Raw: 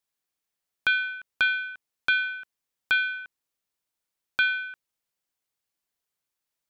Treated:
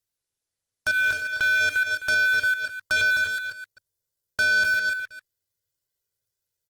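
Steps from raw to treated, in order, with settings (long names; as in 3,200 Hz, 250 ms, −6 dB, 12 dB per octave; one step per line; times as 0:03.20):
delay that plays each chunk backwards 141 ms, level −7.5 dB
comb filter 2 ms, depth 70%
0:00.91–0:01.61: output level in coarse steps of 15 dB
0:03.21–0:04.42: parametric band 2,500 Hz −4.5 dB 1.2 octaves
downward compressor 5 to 1, threshold −22 dBFS, peak gain reduction 8 dB
leveller curve on the samples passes 3
graphic EQ with 15 bands 100 Hz +12 dB, 1,000 Hz −11 dB, 2,500 Hz −9 dB
single-tap delay 258 ms −11.5 dB
brickwall limiter −22.5 dBFS, peak gain reduction 9.5 dB
level +6 dB
Opus 20 kbit/s 48,000 Hz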